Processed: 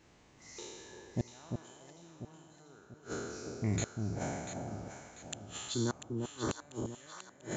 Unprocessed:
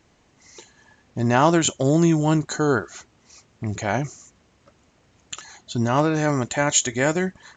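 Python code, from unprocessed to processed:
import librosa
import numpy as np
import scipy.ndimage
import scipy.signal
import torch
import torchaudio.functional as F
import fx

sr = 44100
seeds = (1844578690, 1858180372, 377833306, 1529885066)

p1 = fx.spec_trails(x, sr, decay_s=1.66)
p2 = fx.fixed_phaser(p1, sr, hz=660.0, stages=6, at=(5.74, 6.49))
p3 = fx.gate_flip(p2, sr, shuts_db=-14.0, range_db=-35)
p4 = fx.dynamic_eq(p3, sr, hz=1600.0, q=0.76, threshold_db=-49.0, ratio=4.0, max_db=-5)
p5 = p4 + fx.echo_alternate(p4, sr, ms=346, hz=870.0, feedback_pct=64, wet_db=-4, dry=0)
y = p5 * 10.0 ** (-6.0 / 20.0)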